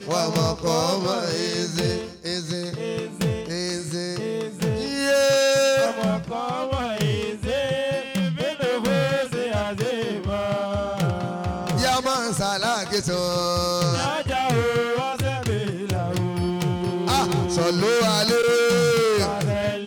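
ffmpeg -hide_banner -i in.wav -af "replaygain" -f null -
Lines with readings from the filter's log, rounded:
track_gain = +3.1 dB
track_peak = 0.185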